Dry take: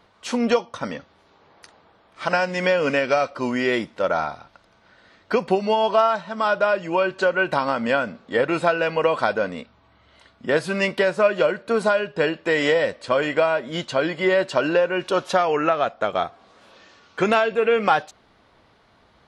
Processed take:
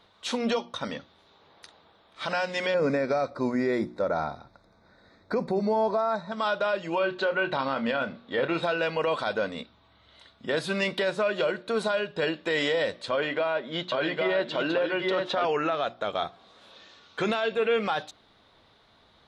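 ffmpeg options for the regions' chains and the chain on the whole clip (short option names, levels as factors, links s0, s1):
-filter_complex "[0:a]asettb=1/sr,asplit=3[s0][s1][s2];[s0]atrim=end=2.744[s3];[s1]atrim=start=2.74:end=6.32,asetpts=PTS-STARTPTS,afade=t=in:d=0.004:c=qsin,afade=t=out:st=3.576:d=0.004:c=qsin,asuperstop=centerf=3000:order=4:qfactor=2.1,tiltshelf=f=760:g=5.5[s4];[s2]atrim=start=6.316[s5];[s3][s4]acrossfade=d=0.004:c1=hsin:c2=qsin[s6];[s6][s5]acrossfade=d=0.004:c1=qsin:c2=hsin,asettb=1/sr,asplit=3[s7][s8][s9];[s7]atrim=end=6.984[s10];[s8]atrim=start=6.98:end=8.63,asetpts=PTS-STARTPTS,afade=t=in:d=0.004:c=qsin,afade=t=out:st=1.646:d=0.004:c=qsin,lowpass=4200,asplit=2[s11][s12];[s12]adelay=30,volume=0.282[s13];[s11][s13]amix=inputs=2:normalize=0,atrim=end_sample=72765[s14];[s9]atrim=start=8.626[s15];[s10][s14]acrossfade=d=0.004:c1=hsin:c2=qsin[s16];[s16][s15]acrossfade=d=0.004:c1=qsin:c2=hsin,asettb=1/sr,asplit=3[s17][s18][s19];[s17]atrim=end=13.114[s20];[s18]atrim=start=13.11:end=15.45,asetpts=PTS-STARTPTS,afade=t=in:d=0.004:c=qsin,afade=t=out:st=2.336:d=0.004:c=qsin,highpass=150,lowpass=3600,aecho=1:1:808:0.596,atrim=end_sample=103194[s21];[s19]atrim=start=15.446[s22];[s20][s21]acrossfade=d=0.004:c1=hsin:c2=qsin[s23];[s23][s22]acrossfade=d=0.004:c1=qsin:c2=hsin,equalizer=f=3700:t=o:w=0.34:g=11,bandreject=f=60:t=h:w=6,bandreject=f=120:t=h:w=6,bandreject=f=180:t=h:w=6,bandreject=f=240:t=h:w=6,bandreject=f=300:t=h:w=6,bandreject=f=360:t=h:w=6,alimiter=limit=0.211:level=0:latency=1:release=20,volume=0.631"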